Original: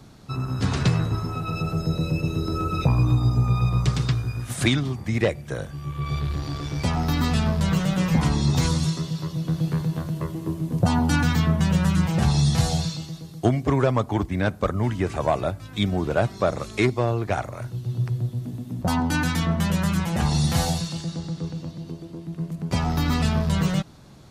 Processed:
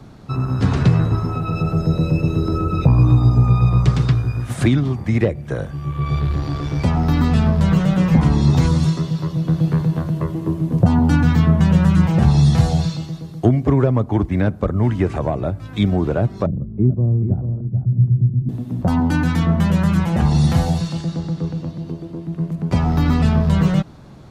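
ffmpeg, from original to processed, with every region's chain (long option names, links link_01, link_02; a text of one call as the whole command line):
ffmpeg -i in.wav -filter_complex "[0:a]asettb=1/sr,asplit=3[link_01][link_02][link_03];[link_01]atrim=end=16.464[link_04];[link_02]atrim=start=16.46:end=18.49,asetpts=PTS-STARTPTS,afade=type=in:duration=0.004:curve=qsin,afade=type=out:start_time=2.026:duration=0.004:curve=qsin,lowpass=frequency=190:width_type=q:width=1.7,aecho=1:1:438:0.355,atrim=end_sample=89523[link_05];[link_03]atrim=start=18.486[link_06];[link_04][link_05]acrossfade=duration=0.004:curve1=hsin:curve2=qsin[link_07];[link_07][link_06]acrossfade=duration=0.004:curve1=qsin:curve2=hsin,highshelf=frequency=3100:gain=-11.5,acrossover=split=440[link_08][link_09];[link_09]acompressor=threshold=-33dB:ratio=4[link_10];[link_08][link_10]amix=inputs=2:normalize=0,volume=7dB" out.wav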